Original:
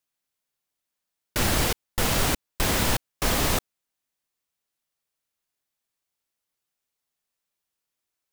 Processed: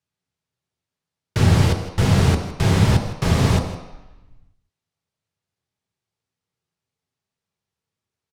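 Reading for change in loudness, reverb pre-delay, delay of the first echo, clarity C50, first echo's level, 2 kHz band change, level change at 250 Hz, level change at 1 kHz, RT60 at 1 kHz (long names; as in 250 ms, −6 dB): +6.0 dB, 3 ms, 161 ms, 7.0 dB, −15.0 dB, 0.0 dB, +9.5 dB, +2.5 dB, 1.1 s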